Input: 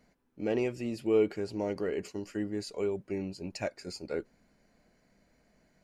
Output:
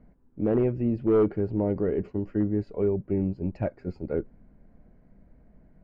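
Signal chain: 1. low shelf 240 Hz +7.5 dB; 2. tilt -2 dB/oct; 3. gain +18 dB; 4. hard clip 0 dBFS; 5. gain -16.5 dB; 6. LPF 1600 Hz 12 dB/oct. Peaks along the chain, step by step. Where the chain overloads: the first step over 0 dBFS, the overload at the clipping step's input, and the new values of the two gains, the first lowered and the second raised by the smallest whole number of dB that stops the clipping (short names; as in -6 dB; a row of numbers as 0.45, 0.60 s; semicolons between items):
-14.0, -10.5, +7.5, 0.0, -16.5, -16.0 dBFS; step 3, 7.5 dB; step 3 +10 dB, step 5 -8.5 dB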